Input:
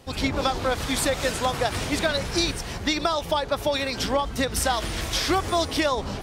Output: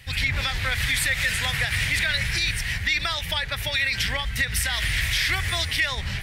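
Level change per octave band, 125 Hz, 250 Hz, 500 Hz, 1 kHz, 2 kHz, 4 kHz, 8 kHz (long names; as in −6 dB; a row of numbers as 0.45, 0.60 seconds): +3.5, −12.5, −14.0, −8.5, +7.5, +3.0, 0.0 decibels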